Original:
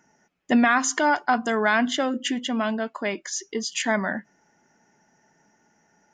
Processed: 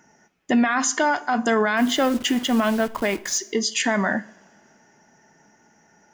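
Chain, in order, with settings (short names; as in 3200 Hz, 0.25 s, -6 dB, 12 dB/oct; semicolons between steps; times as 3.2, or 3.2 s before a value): 1.77–3.38 level-crossing sampler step -37.5 dBFS; limiter -18 dBFS, peak gain reduction 9.5 dB; two-slope reverb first 0.48 s, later 2.7 s, from -21 dB, DRR 13.5 dB; gain +6 dB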